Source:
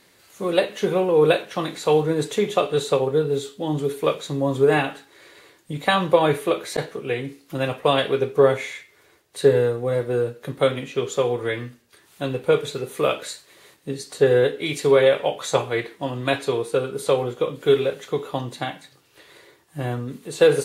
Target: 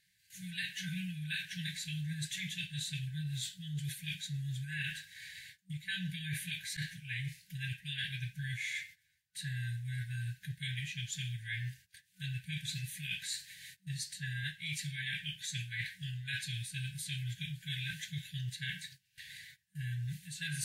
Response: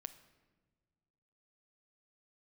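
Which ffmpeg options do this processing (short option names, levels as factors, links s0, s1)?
-af "agate=range=0.141:threshold=0.00282:ratio=16:detection=peak,afftfilt=real='re*(1-between(b*sr/4096,190,1500))':imag='im*(1-between(b*sr/4096,190,1500))':win_size=4096:overlap=0.75,areverse,acompressor=threshold=0.0141:ratio=10,areverse,volume=1.12"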